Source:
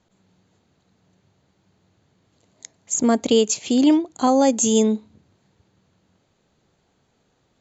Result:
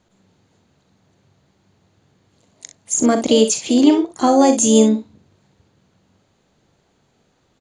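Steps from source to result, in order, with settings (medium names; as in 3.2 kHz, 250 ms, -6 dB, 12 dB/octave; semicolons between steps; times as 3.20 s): harmony voices +5 st -14 dB; early reflections 41 ms -10 dB, 63 ms -11.5 dB; trim +3 dB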